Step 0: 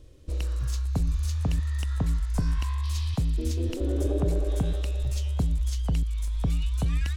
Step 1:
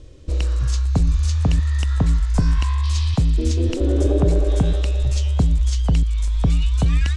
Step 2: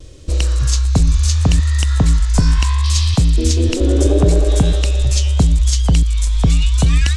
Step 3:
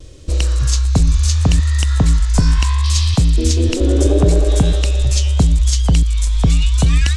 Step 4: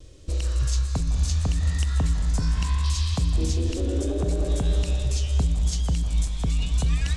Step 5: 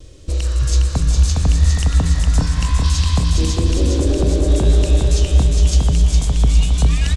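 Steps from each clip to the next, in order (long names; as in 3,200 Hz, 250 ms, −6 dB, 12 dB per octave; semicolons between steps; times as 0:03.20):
low-pass filter 8,500 Hz 24 dB per octave; level +8.5 dB
high-shelf EQ 3,700 Hz +10.5 dB; pitch vibrato 0.72 Hz 27 cents; level +4.5 dB
no processing that can be heard
brickwall limiter −8.5 dBFS, peak gain reduction 7 dB; convolution reverb RT60 2.1 s, pre-delay 147 ms, DRR 8 dB; level −9 dB
repeating echo 410 ms, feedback 53%, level −3.5 dB; level +6.5 dB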